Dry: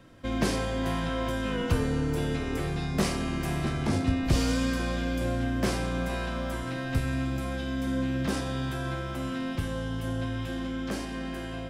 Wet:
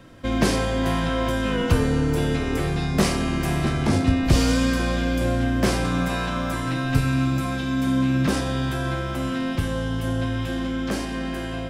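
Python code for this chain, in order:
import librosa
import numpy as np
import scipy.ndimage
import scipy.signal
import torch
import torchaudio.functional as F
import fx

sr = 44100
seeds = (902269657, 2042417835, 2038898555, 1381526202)

y = fx.comb(x, sr, ms=6.8, depth=0.59, at=(5.84, 8.29))
y = F.gain(torch.from_numpy(y), 6.5).numpy()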